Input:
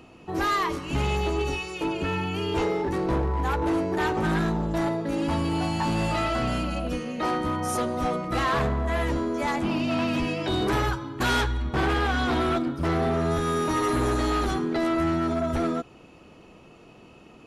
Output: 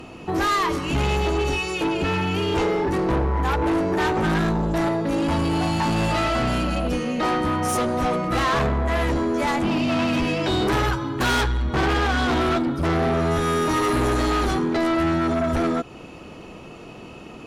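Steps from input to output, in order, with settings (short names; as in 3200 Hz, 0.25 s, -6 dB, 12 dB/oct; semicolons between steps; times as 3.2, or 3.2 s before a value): in parallel at +0.5 dB: compressor, threshold -33 dBFS, peak gain reduction 10.5 dB; on the sum: sine folder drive 4 dB, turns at -14.5 dBFS; gain -4 dB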